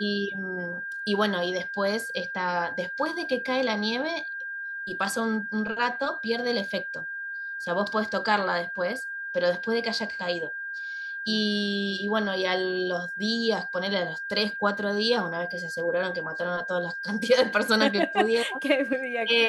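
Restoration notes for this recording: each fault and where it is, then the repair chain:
whine 1.6 kHz -32 dBFS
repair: band-stop 1.6 kHz, Q 30

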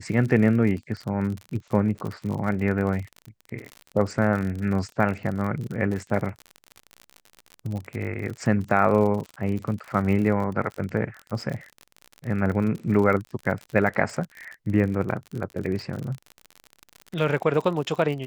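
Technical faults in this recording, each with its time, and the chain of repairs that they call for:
crackle 49 per s -30 dBFS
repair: de-click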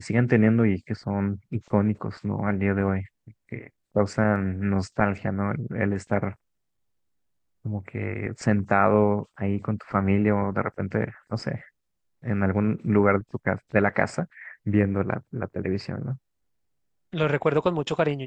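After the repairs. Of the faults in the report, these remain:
nothing left

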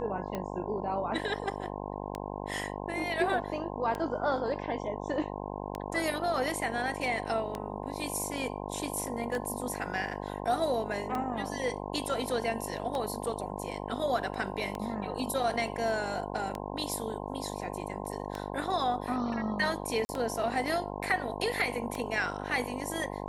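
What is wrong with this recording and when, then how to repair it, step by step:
buzz 50 Hz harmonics 21 -38 dBFS
tick 33 1/3 rpm -20 dBFS
20.05–20.09 s: dropout 40 ms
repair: de-click; de-hum 50 Hz, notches 21; interpolate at 20.05 s, 40 ms

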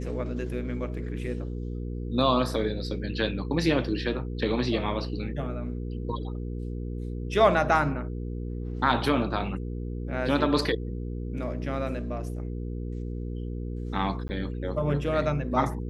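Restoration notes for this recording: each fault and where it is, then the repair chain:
hum 60 Hz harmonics 8 -33 dBFS
14.28–14.29 s: dropout 10 ms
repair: de-hum 60 Hz, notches 8; interpolate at 14.28 s, 10 ms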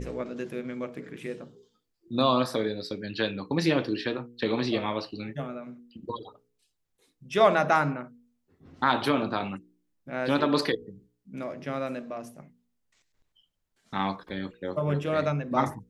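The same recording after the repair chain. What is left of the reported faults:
nothing left

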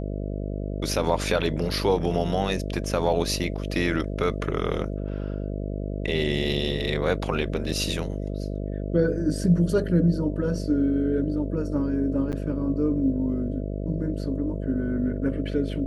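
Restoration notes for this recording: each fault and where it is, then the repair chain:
buzz 50 Hz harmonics 13 -30 dBFS
12.32–12.33 s: dropout 8.8 ms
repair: de-hum 50 Hz, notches 13; interpolate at 12.32 s, 8.8 ms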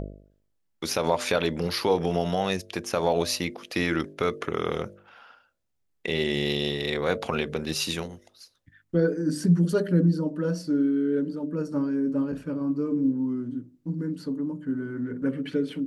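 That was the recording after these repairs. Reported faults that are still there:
nothing left

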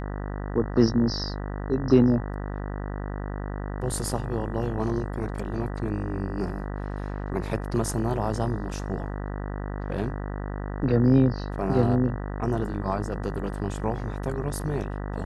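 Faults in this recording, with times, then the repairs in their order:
buzz 50 Hz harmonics 39 -32 dBFS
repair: de-hum 50 Hz, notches 39

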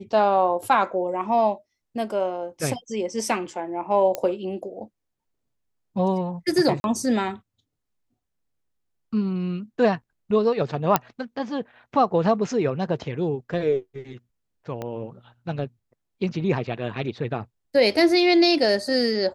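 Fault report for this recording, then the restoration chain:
4.15 s: pop -12 dBFS
6.80–6.84 s: dropout 41 ms
10.96 s: pop -3 dBFS
14.82 s: pop -18 dBFS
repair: de-click; interpolate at 6.80 s, 41 ms

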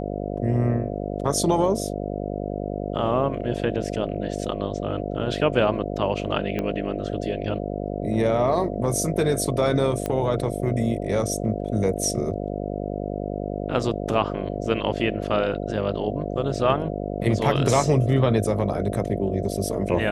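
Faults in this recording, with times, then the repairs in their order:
buzz 50 Hz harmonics 14 -29 dBFS
6.59 s: pop -14 dBFS
10.06 s: pop -13 dBFS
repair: de-click; de-hum 50 Hz, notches 14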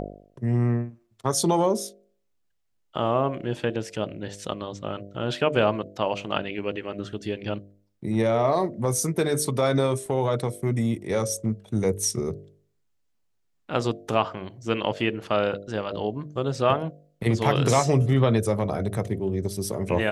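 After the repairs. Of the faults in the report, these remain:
6.59 s: pop

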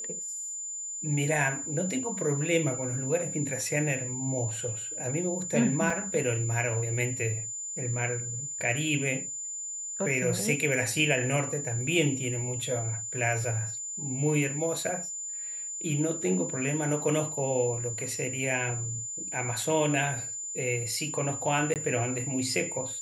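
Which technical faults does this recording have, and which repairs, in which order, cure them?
whine 7.1 kHz -34 dBFS
5.90 s: dropout 3.4 ms
21.74–21.76 s: dropout 18 ms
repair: band-stop 7.1 kHz, Q 30; interpolate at 5.90 s, 3.4 ms; interpolate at 21.74 s, 18 ms

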